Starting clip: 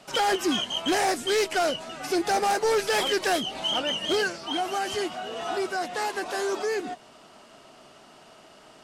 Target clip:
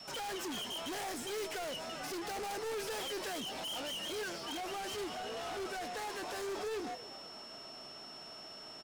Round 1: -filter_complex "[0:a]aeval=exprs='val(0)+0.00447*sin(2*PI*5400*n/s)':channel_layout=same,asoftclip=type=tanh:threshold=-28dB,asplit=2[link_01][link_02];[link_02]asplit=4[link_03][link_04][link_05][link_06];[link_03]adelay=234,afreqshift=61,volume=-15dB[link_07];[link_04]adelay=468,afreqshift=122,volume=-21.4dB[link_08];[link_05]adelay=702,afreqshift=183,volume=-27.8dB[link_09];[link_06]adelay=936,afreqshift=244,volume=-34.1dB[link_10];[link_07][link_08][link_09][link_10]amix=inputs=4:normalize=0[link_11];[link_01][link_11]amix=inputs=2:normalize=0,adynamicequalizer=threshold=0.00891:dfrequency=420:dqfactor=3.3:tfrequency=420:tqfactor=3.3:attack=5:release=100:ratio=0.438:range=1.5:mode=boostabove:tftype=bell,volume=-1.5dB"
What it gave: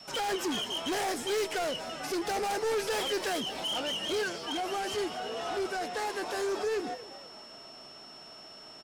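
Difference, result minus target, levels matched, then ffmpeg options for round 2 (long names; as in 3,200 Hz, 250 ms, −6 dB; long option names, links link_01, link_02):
soft clipping: distortion −6 dB
-filter_complex "[0:a]aeval=exprs='val(0)+0.00447*sin(2*PI*5400*n/s)':channel_layout=same,asoftclip=type=tanh:threshold=-37.5dB,asplit=2[link_01][link_02];[link_02]asplit=4[link_03][link_04][link_05][link_06];[link_03]adelay=234,afreqshift=61,volume=-15dB[link_07];[link_04]adelay=468,afreqshift=122,volume=-21.4dB[link_08];[link_05]adelay=702,afreqshift=183,volume=-27.8dB[link_09];[link_06]adelay=936,afreqshift=244,volume=-34.1dB[link_10];[link_07][link_08][link_09][link_10]amix=inputs=4:normalize=0[link_11];[link_01][link_11]amix=inputs=2:normalize=0,adynamicequalizer=threshold=0.00891:dfrequency=420:dqfactor=3.3:tfrequency=420:tqfactor=3.3:attack=5:release=100:ratio=0.438:range=1.5:mode=boostabove:tftype=bell,volume=-1.5dB"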